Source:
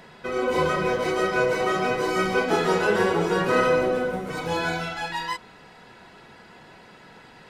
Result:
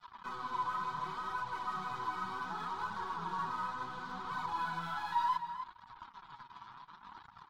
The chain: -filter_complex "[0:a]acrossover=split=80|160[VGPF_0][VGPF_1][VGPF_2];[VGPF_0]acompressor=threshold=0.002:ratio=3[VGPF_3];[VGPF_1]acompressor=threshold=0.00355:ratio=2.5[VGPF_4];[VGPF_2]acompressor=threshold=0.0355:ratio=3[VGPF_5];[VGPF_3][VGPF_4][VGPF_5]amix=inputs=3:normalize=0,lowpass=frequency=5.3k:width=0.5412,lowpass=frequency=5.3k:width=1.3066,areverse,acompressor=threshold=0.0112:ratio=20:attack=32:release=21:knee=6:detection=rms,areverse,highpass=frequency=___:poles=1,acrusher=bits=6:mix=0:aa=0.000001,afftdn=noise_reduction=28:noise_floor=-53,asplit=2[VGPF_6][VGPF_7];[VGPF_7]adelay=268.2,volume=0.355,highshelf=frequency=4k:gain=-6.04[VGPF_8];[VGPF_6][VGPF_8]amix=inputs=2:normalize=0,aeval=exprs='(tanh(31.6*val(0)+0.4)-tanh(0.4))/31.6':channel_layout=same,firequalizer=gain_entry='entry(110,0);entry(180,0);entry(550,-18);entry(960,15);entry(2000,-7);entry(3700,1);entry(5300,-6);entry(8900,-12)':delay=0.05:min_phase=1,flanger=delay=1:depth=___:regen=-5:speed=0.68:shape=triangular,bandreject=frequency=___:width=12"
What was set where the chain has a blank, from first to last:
55, 9.1, 2.7k